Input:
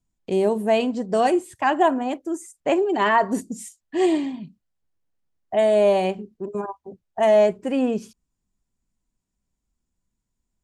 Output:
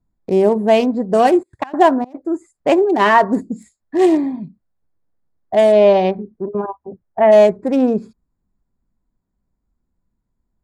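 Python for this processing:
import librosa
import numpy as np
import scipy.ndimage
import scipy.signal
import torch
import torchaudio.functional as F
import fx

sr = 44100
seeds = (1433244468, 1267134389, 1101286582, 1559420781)

y = fx.wiener(x, sr, points=15)
y = fx.step_gate(y, sr, bpm=147, pattern='xx.xx.x.x', floor_db=-24.0, edge_ms=4.5, at=(1.28, 2.19), fade=0.02)
y = fx.lowpass(y, sr, hz=fx.line((5.71, 5300.0), (7.31, 2200.0)), slope=24, at=(5.71, 7.31), fade=0.02)
y = F.gain(torch.from_numpy(y), 7.0).numpy()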